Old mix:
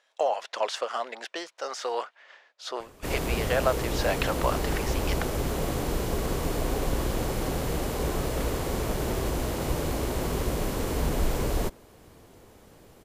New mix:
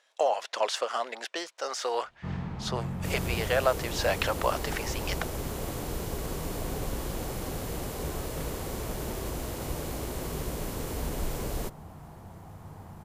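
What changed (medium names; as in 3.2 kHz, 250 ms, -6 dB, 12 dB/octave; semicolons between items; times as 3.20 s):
first sound: unmuted; second sound -6.5 dB; master: add treble shelf 6 kHz +6 dB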